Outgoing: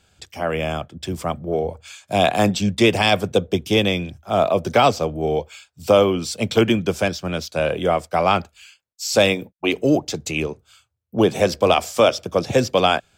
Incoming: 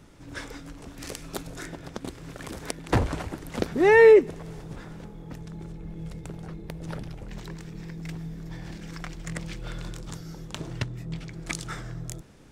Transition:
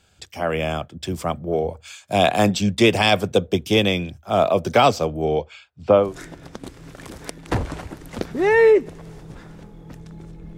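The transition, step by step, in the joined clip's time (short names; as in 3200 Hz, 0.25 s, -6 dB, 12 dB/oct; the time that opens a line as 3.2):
outgoing
5.24–6.15 LPF 6900 Hz -> 1200 Hz
6.05 switch to incoming from 1.46 s, crossfade 0.20 s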